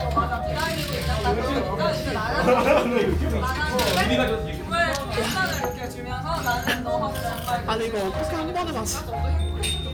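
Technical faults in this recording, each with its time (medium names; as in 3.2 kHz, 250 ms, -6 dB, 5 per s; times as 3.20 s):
0.93 s: pop
5.47 s: pop
7.77–9.24 s: clipped -22 dBFS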